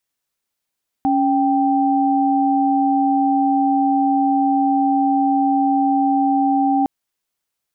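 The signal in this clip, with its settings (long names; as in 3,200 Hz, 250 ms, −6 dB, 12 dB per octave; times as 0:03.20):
held notes C#4/G5 sine, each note −16.5 dBFS 5.81 s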